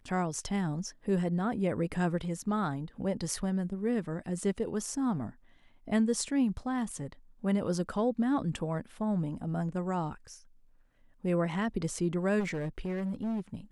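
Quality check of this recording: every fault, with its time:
0:12.39–0:13.40: clipping −30 dBFS

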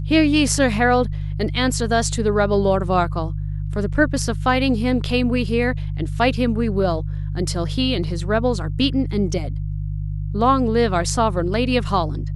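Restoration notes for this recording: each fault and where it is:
mains hum 50 Hz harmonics 3 −25 dBFS

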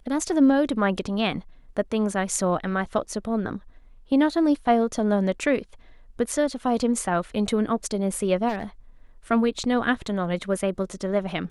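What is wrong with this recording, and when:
0:08.48–0:08.64: clipping −23.5 dBFS

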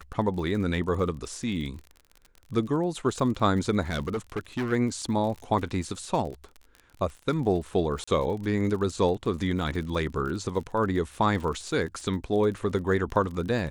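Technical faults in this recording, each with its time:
surface crackle 40 per second −35 dBFS
0:03.90–0:04.73: clipping −25 dBFS
0:08.04–0:08.07: drop-out 35 ms

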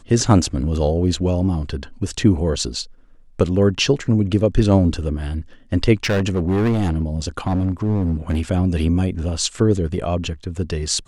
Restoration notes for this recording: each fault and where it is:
0:06.04–0:08.41: clipping −15 dBFS

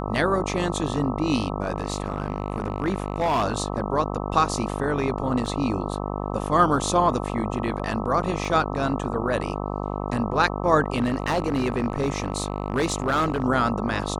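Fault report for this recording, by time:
mains buzz 50 Hz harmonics 26 −29 dBFS
0:01.76–0:03.44: clipping −18 dBFS
0:05.46: drop-out 2.3 ms
0:08.45: drop-out 2.7 ms
0:10.96–0:13.44: clipping −17.5 dBFS

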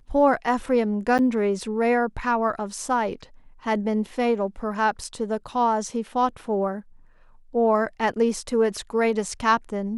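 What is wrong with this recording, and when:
0:01.18–0:01.19: drop-out 8.4 ms

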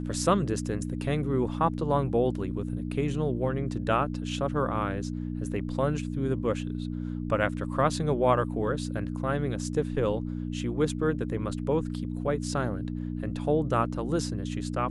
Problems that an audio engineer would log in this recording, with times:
mains hum 60 Hz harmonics 5 −33 dBFS

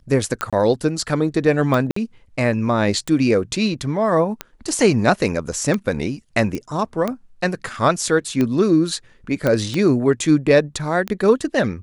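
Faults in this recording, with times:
scratch tick 45 rpm −9 dBFS
0:00.50–0:00.53: drop-out 26 ms
0:01.91–0:01.96: drop-out 54 ms
0:06.55: click −14 dBFS
0:09.47: click −7 dBFS

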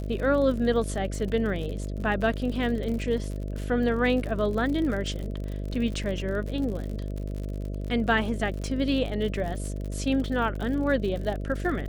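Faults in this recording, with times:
mains buzz 50 Hz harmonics 13 −32 dBFS
surface crackle 58 per second −33 dBFS

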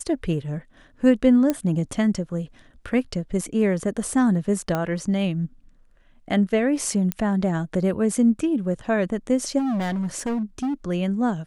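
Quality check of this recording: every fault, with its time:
0:01.50: click −9 dBFS
0:04.75: click −12 dBFS
0:07.12: click −9 dBFS
0:09.58–0:10.74: clipping −22 dBFS

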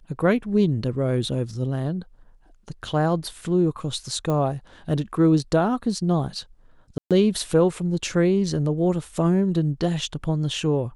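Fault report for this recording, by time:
0:04.30: click −15 dBFS
0:06.98–0:07.11: drop-out 127 ms

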